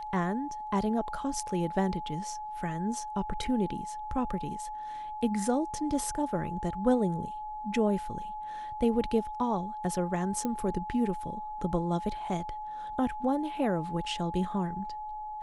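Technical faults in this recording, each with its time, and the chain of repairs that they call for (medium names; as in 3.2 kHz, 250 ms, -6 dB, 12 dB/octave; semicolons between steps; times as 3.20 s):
whine 850 Hz -36 dBFS
10.45 s: pop -19 dBFS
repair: de-click; band-stop 850 Hz, Q 30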